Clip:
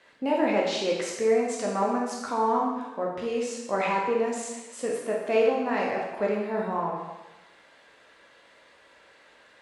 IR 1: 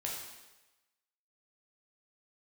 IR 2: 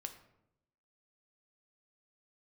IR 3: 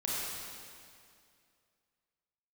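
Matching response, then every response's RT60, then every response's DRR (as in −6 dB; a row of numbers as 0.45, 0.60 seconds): 1; 1.1, 0.85, 2.3 seconds; −3.0, 5.5, −6.5 decibels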